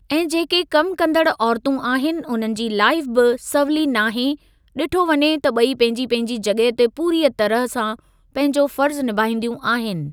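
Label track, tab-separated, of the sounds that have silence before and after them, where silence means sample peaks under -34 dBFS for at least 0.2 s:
4.760000	7.990000	sound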